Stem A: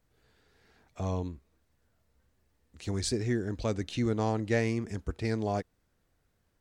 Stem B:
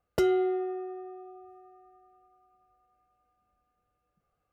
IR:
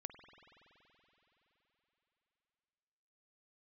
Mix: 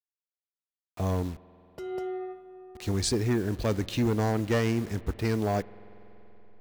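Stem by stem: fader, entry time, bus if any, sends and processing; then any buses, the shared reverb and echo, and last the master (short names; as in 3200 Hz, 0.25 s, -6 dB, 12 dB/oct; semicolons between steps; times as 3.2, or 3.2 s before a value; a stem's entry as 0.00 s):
+2.0 dB, 0.00 s, send -4.5 dB, no echo send, level-crossing sampler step -46.5 dBFS; hard clip -25 dBFS, distortion -14 dB
-9.0 dB, 1.60 s, no send, echo send -9 dB, AGC gain up to 10.5 dB; auto duck -24 dB, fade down 0.45 s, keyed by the first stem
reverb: on, RT60 4.0 s, pre-delay 47 ms
echo: echo 0.198 s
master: dry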